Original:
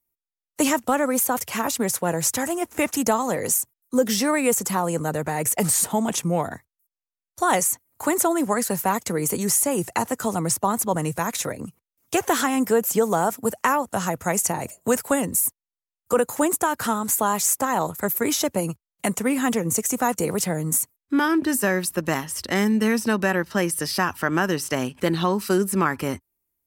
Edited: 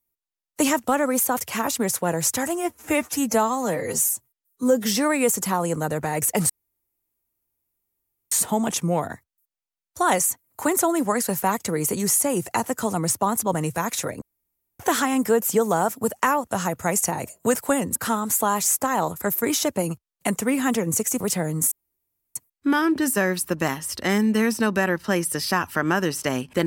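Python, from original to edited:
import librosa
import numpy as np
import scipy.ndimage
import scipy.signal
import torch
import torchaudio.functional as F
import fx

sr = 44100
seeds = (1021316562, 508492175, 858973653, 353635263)

y = fx.edit(x, sr, fx.stretch_span(start_s=2.56, length_s=1.53, factor=1.5),
    fx.insert_room_tone(at_s=5.73, length_s=1.82),
    fx.room_tone_fill(start_s=11.63, length_s=0.58),
    fx.cut(start_s=15.37, length_s=1.37),
    fx.cut(start_s=19.99, length_s=0.32),
    fx.insert_room_tone(at_s=20.82, length_s=0.64), tone=tone)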